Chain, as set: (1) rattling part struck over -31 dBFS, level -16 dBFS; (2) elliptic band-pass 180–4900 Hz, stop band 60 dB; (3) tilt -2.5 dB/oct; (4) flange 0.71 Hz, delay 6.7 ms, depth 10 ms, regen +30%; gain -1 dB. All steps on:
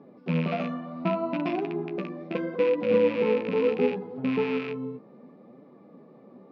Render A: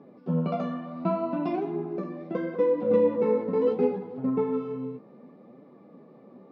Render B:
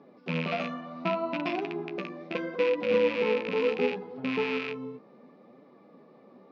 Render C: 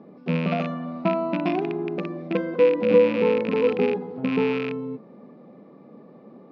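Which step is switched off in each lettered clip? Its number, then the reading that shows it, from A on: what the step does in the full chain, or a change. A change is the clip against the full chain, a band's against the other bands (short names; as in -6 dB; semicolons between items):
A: 1, 2 kHz band -10.5 dB; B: 3, 4 kHz band +6.5 dB; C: 4, loudness change +4.0 LU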